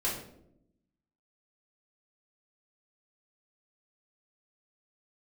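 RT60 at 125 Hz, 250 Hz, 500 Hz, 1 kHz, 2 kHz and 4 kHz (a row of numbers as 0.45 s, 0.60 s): 1.2 s, 1.2 s, 0.90 s, 0.60 s, 0.50 s, 0.45 s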